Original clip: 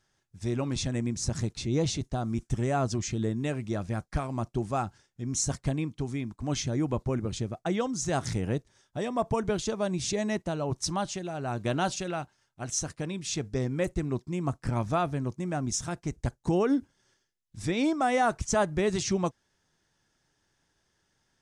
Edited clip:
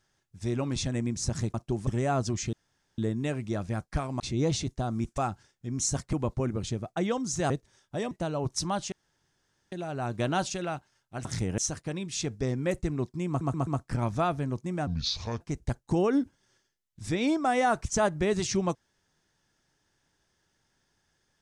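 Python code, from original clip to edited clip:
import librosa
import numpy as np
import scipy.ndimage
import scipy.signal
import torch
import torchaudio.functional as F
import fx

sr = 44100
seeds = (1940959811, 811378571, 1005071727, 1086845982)

y = fx.edit(x, sr, fx.swap(start_s=1.54, length_s=0.98, other_s=4.4, other_length_s=0.33),
    fx.insert_room_tone(at_s=3.18, length_s=0.45),
    fx.cut(start_s=5.68, length_s=1.14),
    fx.move(start_s=8.19, length_s=0.33, to_s=12.71),
    fx.cut(start_s=9.13, length_s=1.24),
    fx.insert_room_tone(at_s=11.18, length_s=0.8),
    fx.stutter(start_s=14.41, slice_s=0.13, count=4),
    fx.speed_span(start_s=15.61, length_s=0.36, speed=0.67), tone=tone)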